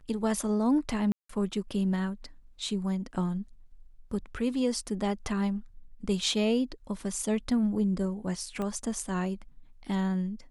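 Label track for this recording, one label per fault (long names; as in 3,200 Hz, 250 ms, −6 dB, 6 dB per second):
1.120000	1.290000	drop-out 174 ms
8.620000	8.620000	click −22 dBFS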